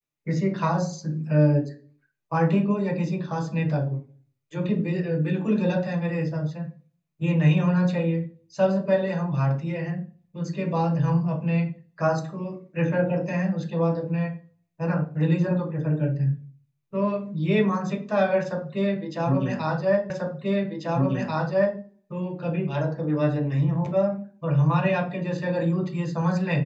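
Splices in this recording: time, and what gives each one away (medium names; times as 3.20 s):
20.10 s: repeat of the last 1.69 s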